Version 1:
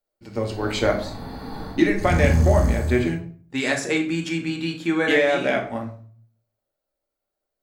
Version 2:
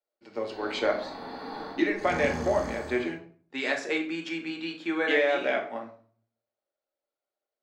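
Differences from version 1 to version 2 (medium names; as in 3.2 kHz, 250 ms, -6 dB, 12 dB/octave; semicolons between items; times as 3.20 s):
speech -4.5 dB; master: add three-band isolator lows -24 dB, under 270 Hz, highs -18 dB, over 5.5 kHz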